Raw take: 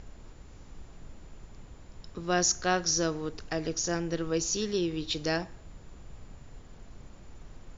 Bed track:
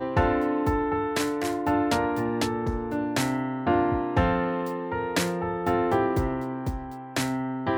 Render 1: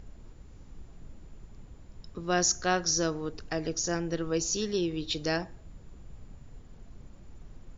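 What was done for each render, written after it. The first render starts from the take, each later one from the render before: noise reduction 6 dB, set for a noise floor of -50 dBFS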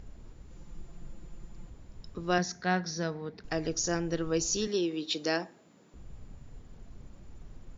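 0.50–1.70 s: comb 5.8 ms; 2.38–3.44 s: cabinet simulation 160–4200 Hz, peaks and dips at 190 Hz +8 dB, 320 Hz -8 dB, 550 Hz -6 dB, 1.2 kHz -8 dB, 2 kHz +4 dB, 2.9 kHz -9 dB; 4.67–5.94 s: high-pass 200 Hz 24 dB/octave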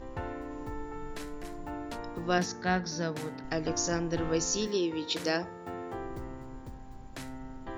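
add bed track -15.5 dB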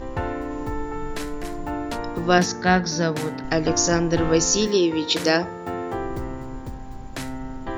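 trim +10.5 dB

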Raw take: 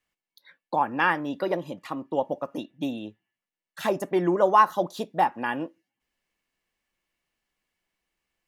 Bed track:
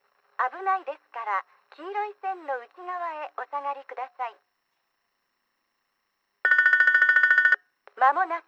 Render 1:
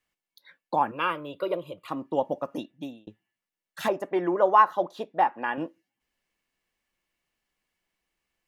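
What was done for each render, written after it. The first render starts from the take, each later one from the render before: 0.91–1.88 s: static phaser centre 1.2 kHz, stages 8; 2.55–3.07 s: fade out; 3.88–5.58 s: tone controls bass -12 dB, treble -14 dB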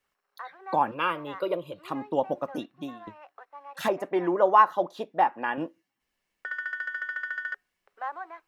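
add bed track -14.5 dB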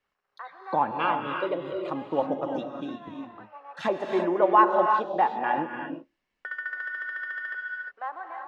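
distance through air 120 m; gated-style reverb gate 380 ms rising, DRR 3.5 dB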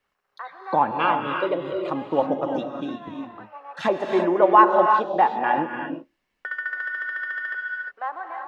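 trim +4.5 dB

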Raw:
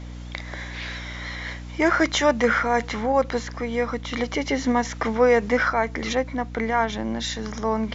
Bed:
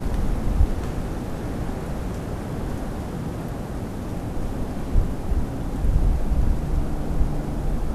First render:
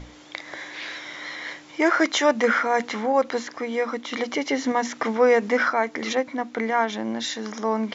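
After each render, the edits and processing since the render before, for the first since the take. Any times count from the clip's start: hum notches 60/120/180/240 Hz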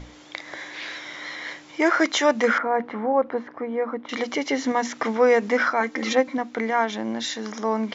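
2.58–4.09 s: low-pass 1.3 kHz; 5.80–6.38 s: comb 3.8 ms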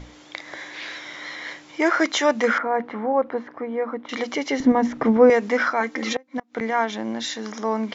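4.60–5.30 s: tilt EQ -4.5 dB/octave; 6.16–6.61 s: inverted gate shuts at -14 dBFS, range -30 dB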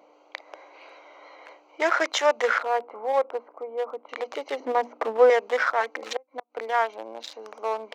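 local Wiener filter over 25 samples; high-pass 470 Hz 24 dB/octave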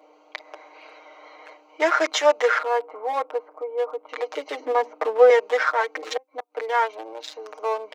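high-pass 270 Hz 24 dB/octave; comb 6.5 ms, depth 83%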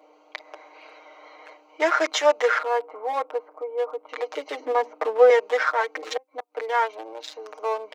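trim -1 dB

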